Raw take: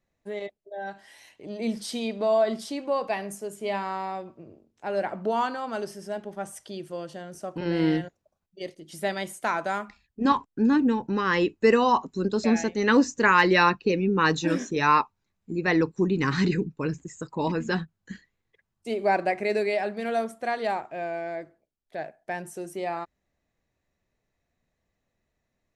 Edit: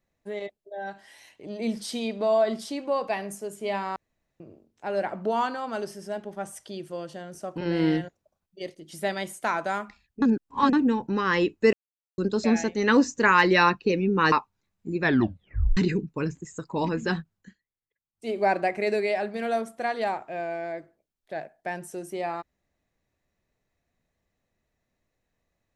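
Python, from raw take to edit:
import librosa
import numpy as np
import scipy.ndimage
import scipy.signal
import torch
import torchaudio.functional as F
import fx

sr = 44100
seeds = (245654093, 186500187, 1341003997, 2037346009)

y = fx.edit(x, sr, fx.room_tone_fill(start_s=3.96, length_s=0.44),
    fx.reverse_span(start_s=10.22, length_s=0.51),
    fx.silence(start_s=11.73, length_s=0.45),
    fx.cut(start_s=14.32, length_s=0.63),
    fx.tape_stop(start_s=15.64, length_s=0.76),
    fx.fade_down_up(start_s=17.97, length_s=0.98, db=-20.0, fade_s=0.19), tone=tone)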